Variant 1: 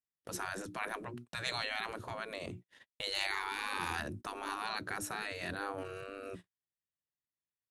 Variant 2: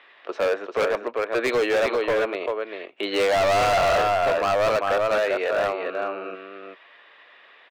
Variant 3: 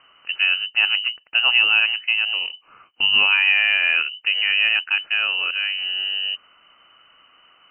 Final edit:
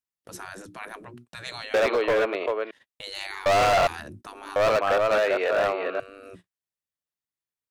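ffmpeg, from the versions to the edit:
-filter_complex "[1:a]asplit=3[s0][s1][s2];[0:a]asplit=4[s3][s4][s5][s6];[s3]atrim=end=1.742[s7];[s0]atrim=start=1.738:end=2.712[s8];[s4]atrim=start=2.708:end=3.462[s9];[s1]atrim=start=3.458:end=3.872[s10];[s5]atrim=start=3.868:end=4.562[s11];[s2]atrim=start=4.558:end=6.002[s12];[s6]atrim=start=5.998[s13];[s7][s8]acrossfade=d=0.004:c1=hsin:c2=hsin[s14];[s14][s9]acrossfade=d=0.004:c1=hsin:c2=hsin[s15];[s15][s10]acrossfade=d=0.004:c1=hsin:c2=hsin[s16];[s16][s11]acrossfade=d=0.004:c1=hsin:c2=hsin[s17];[s17][s12]acrossfade=d=0.004:c1=hsin:c2=hsin[s18];[s18][s13]acrossfade=d=0.004:c1=hsin:c2=hsin"

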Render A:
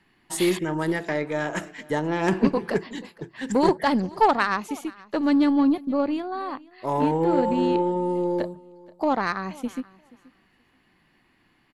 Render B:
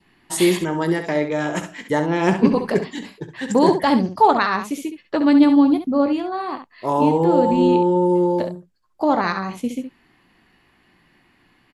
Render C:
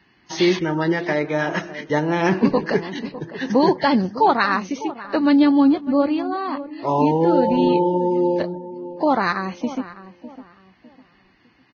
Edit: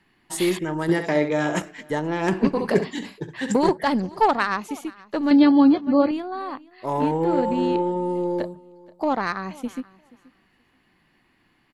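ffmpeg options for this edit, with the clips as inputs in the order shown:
-filter_complex "[1:a]asplit=2[s0][s1];[0:a]asplit=4[s2][s3][s4][s5];[s2]atrim=end=0.892[s6];[s0]atrim=start=0.888:end=1.622[s7];[s3]atrim=start=1.618:end=2.592[s8];[s1]atrim=start=2.588:end=3.562[s9];[s4]atrim=start=3.558:end=5.312[s10];[2:a]atrim=start=5.308:end=6.112[s11];[s5]atrim=start=6.108[s12];[s6][s7]acrossfade=d=0.004:c1=hsin:c2=hsin[s13];[s13][s8]acrossfade=d=0.004:c1=hsin:c2=hsin[s14];[s14][s9]acrossfade=d=0.004:c1=hsin:c2=hsin[s15];[s15][s10]acrossfade=d=0.004:c1=hsin:c2=hsin[s16];[s16][s11]acrossfade=d=0.004:c1=hsin:c2=hsin[s17];[s17][s12]acrossfade=d=0.004:c1=hsin:c2=hsin"

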